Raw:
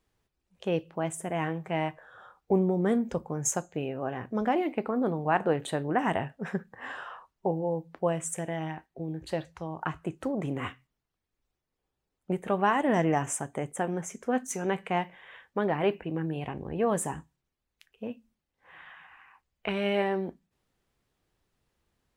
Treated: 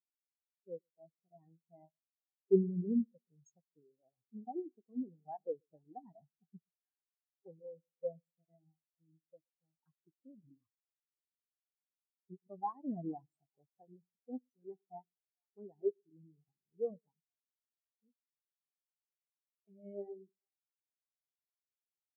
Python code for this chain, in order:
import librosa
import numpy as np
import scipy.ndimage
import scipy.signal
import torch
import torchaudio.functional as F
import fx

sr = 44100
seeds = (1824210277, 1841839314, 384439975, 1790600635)

y = fx.dmg_buzz(x, sr, base_hz=400.0, harmonics=29, level_db=-46.0, tilt_db=-3, odd_only=False)
y = fx.echo_split(y, sr, split_hz=670.0, low_ms=119, high_ms=454, feedback_pct=52, wet_db=-12)
y = fx.spectral_expand(y, sr, expansion=4.0)
y = F.gain(torch.from_numpy(y), -5.5).numpy()